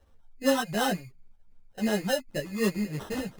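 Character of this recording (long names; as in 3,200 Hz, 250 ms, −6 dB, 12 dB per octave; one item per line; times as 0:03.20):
phaser sweep stages 6, 2.7 Hz, lowest notch 290–2,500 Hz
aliases and images of a low sample rate 2,300 Hz, jitter 0%
a shimmering, thickened sound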